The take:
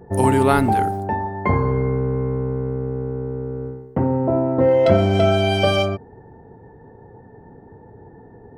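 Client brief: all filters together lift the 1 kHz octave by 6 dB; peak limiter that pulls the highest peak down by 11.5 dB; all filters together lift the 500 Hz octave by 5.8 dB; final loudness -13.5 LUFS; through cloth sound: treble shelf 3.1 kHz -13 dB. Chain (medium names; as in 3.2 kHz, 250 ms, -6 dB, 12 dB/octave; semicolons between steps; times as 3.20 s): peaking EQ 500 Hz +5.5 dB; peaking EQ 1 kHz +7 dB; peak limiter -8.5 dBFS; treble shelf 3.1 kHz -13 dB; trim +5.5 dB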